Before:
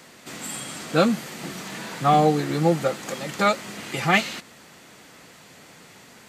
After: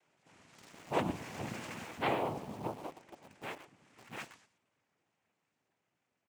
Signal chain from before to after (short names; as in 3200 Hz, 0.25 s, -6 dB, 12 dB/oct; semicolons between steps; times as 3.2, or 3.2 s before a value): formant sharpening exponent 1.5; Doppler pass-by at 1.46, 13 m/s, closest 3.2 m; elliptic low-pass 4000 Hz; notches 60/120/180/240/300/360/420 Hz; on a send: echo 0.122 s -13 dB; on the sum: noise vocoder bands 4; in parallel at -6 dB: bit-crush 7-bit; on the sum: record warp 33 1/3 rpm, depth 100 cents; gain -9 dB